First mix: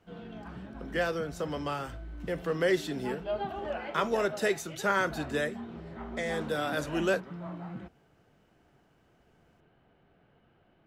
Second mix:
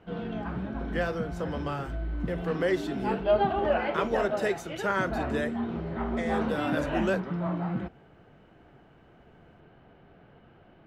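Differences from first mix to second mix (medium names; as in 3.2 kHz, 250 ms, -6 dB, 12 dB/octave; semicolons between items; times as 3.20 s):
background +10.0 dB; master: add treble shelf 3.5 kHz -7.5 dB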